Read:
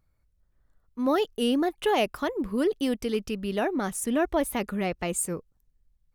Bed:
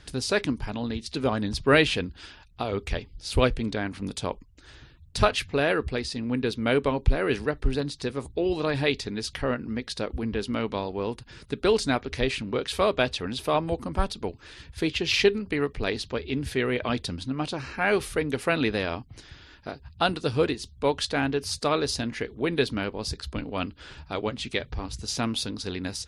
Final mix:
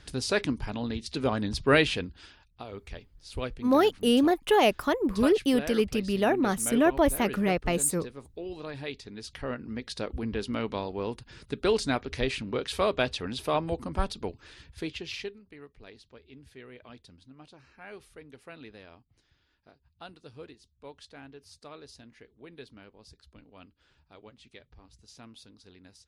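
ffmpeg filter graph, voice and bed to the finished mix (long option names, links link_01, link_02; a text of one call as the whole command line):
ffmpeg -i stem1.wav -i stem2.wav -filter_complex "[0:a]adelay=2650,volume=2.5dB[link_01];[1:a]volume=7.5dB,afade=type=out:start_time=1.73:duration=0.93:silence=0.298538,afade=type=in:start_time=9.02:duration=1.1:silence=0.334965,afade=type=out:start_time=14.3:duration=1.05:silence=0.112202[link_02];[link_01][link_02]amix=inputs=2:normalize=0" out.wav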